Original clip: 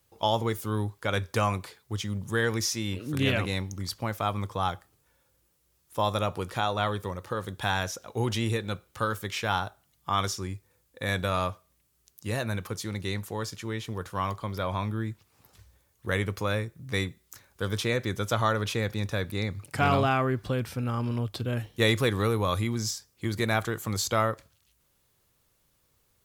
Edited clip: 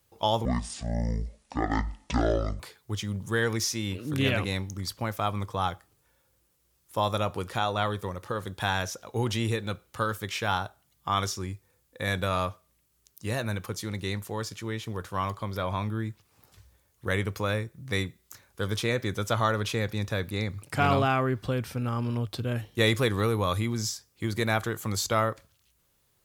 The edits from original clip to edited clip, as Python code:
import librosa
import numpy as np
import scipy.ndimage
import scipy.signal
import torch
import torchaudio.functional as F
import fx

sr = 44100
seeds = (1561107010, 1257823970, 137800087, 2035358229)

y = fx.edit(x, sr, fx.speed_span(start_s=0.45, length_s=1.16, speed=0.54), tone=tone)